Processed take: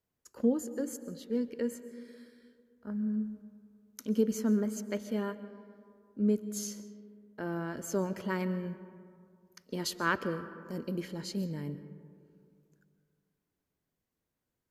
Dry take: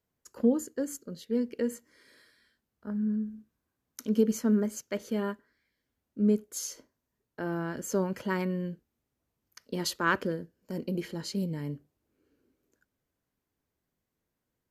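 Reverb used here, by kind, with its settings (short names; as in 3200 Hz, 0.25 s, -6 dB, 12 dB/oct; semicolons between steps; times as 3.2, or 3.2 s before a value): digital reverb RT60 2.3 s, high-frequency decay 0.35×, pre-delay 95 ms, DRR 13 dB; gain -3 dB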